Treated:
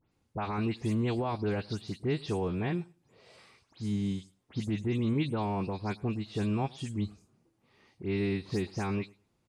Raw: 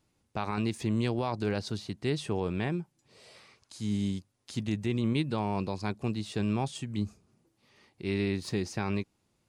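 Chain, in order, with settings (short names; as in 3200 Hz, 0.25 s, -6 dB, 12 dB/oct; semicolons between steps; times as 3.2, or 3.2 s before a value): spectral delay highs late, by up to 0.116 s; high shelf 3600 Hz -7 dB; feedback echo 0.106 s, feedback 17%, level -24 dB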